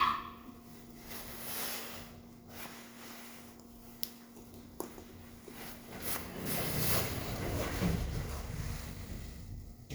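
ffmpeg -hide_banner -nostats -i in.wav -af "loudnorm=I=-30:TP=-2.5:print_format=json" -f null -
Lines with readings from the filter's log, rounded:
"input_i" : "-38.3",
"input_tp" : "-10.3",
"input_lra" : "11.4",
"input_thresh" : "-49.1",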